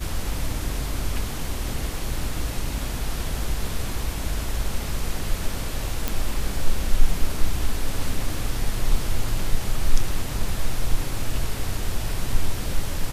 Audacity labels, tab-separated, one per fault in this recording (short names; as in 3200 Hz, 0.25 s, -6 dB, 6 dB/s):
6.080000	6.080000	pop